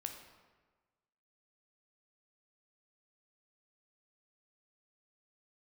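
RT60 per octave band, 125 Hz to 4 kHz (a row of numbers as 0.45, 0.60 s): 1.5, 1.4, 1.4, 1.4, 1.2, 0.90 s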